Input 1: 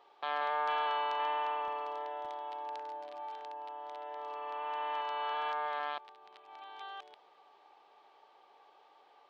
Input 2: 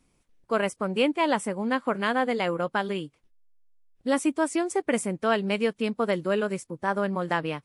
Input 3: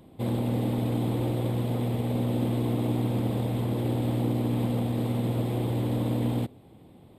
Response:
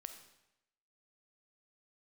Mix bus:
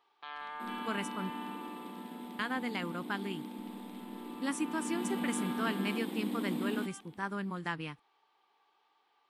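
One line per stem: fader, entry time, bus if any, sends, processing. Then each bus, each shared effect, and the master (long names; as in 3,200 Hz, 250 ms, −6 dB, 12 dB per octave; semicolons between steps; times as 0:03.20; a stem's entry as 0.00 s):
−5.5 dB, 0.00 s, no send, no processing
−7.0 dB, 0.35 s, muted 0:01.30–0:02.39, send −21.5 dB, no processing
0:04.60 −11.5 dB → 0:05.13 −3.5 dB, 0.40 s, no send, Butterworth high-pass 180 Hz 96 dB per octave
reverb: on, RT60 0.90 s, pre-delay 5 ms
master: parametric band 580 Hz −14.5 dB 0.84 octaves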